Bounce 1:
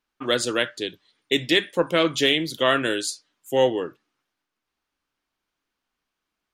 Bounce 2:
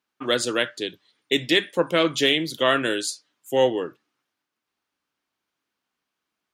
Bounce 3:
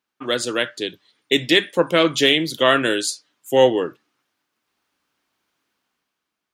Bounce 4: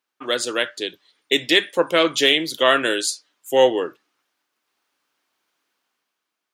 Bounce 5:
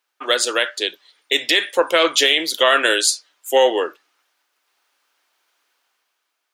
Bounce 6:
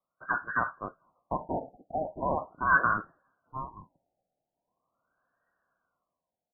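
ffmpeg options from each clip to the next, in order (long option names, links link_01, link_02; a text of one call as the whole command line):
ffmpeg -i in.wav -af "highpass=99" out.wav
ffmpeg -i in.wav -af "dynaudnorm=framelen=110:gausssize=13:maxgain=8.5dB" out.wav
ffmpeg -i in.wav -af "bass=frequency=250:gain=-11,treble=frequency=4000:gain=1" out.wav
ffmpeg -i in.wav -af "highpass=490,bandreject=frequency=1100:width=27,alimiter=level_in=9dB:limit=-1dB:release=50:level=0:latency=1,volume=-2.5dB" out.wav
ffmpeg -i in.wav -af "aecho=1:1:2.2:0.44,lowpass=frequency=2500:width_type=q:width=0.5098,lowpass=frequency=2500:width_type=q:width=0.6013,lowpass=frequency=2500:width_type=q:width=0.9,lowpass=frequency=2500:width_type=q:width=2.563,afreqshift=-2900,afftfilt=real='re*lt(b*sr/1024,850*pow(1900/850,0.5+0.5*sin(2*PI*0.41*pts/sr)))':imag='im*lt(b*sr/1024,850*pow(1900/850,0.5+0.5*sin(2*PI*0.41*pts/sr)))':win_size=1024:overlap=0.75,volume=-6.5dB" out.wav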